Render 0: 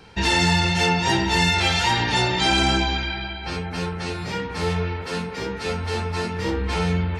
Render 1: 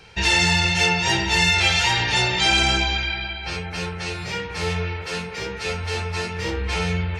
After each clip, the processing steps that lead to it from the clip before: fifteen-band EQ 250 Hz -11 dB, 1000 Hz -3 dB, 2500 Hz +5 dB, 6300 Hz +4 dB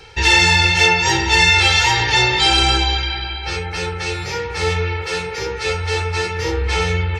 reverse; upward compressor, threshold -26 dBFS; reverse; comb 2.3 ms, depth 72%; gain +2.5 dB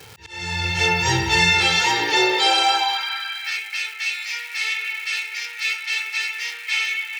crackle 500/s -27 dBFS; auto swell 0.76 s; high-pass sweep 110 Hz -> 2300 Hz, 1.33–3.62; gain -4 dB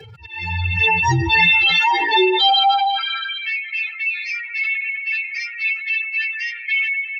spectral contrast raised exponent 2.8; gain +3.5 dB

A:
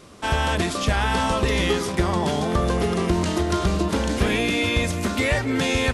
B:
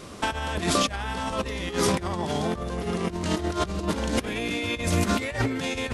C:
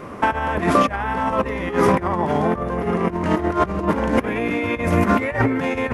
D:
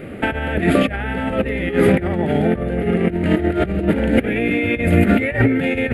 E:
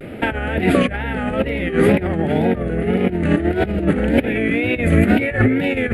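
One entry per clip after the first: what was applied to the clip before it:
negative-ratio compressor -26 dBFS, ratio -0.5
ten-band EQ 125 Hz +4 dB, 250 Hz +5 dB, 500 Hz +5 dB, 1000 Hz +8 dB, 2000 Hz +7 dB, 4000 Hz -11 dB, 8000 Hz -10 dB; gain +1 dB
fixed phaser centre 2500 Hz, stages 4; gain +5 dB
wow and flutter 110 cents

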